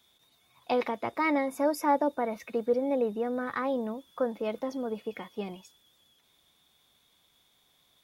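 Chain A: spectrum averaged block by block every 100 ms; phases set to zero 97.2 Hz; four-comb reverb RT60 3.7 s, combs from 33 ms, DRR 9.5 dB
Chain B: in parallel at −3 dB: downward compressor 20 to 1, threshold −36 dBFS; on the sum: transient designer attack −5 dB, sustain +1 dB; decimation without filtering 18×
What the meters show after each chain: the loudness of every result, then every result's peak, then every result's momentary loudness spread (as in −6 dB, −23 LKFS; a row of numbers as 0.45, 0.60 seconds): −35.0, −30.0 LKFS; −15.0, −15.0 dBFS; 12, 11 LU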